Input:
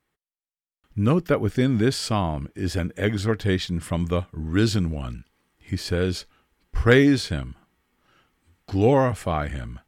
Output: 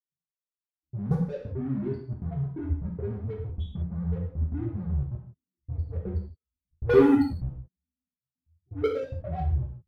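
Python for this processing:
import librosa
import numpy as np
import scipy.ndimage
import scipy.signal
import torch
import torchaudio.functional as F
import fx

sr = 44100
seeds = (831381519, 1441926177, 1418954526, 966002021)

y = fx.spec_steps(x, sr, hold_ms=50)
y = scipy.signal.sosfilt(scipy.signal.butter(2, 73.0, 'highpass', fs=sr, output='sos'), y)
y = fx.spec_topn(y, sr, count=2)
y = fx.step_gate(y, sr, bpm=176, pattern='xxxxx.x.x', floor_db=-60.0, edge_ms=4.5)
y = fx.level_steps(y, sr, step_db=22)
y = fx.high_shelf(y, sr, hz=4300.0, db=-9.5)
y = fx.leveller(y, sr, passes=3)
y = fx.env_lowpass(y, sr, base_hz=380.0, full_db=-24.5)
y = fx.low_shelf(y, sr, hz=290.0, db=5.5)
y = fx.notch(y, sr, hz=2800.0, q=19.0)
y = fx.rev_gated(y, sr, seeds[0], gate_ms=200, shape='falling', drr_db=-2.0)
y = y * 10.0 ** (-4.0 / 20.0)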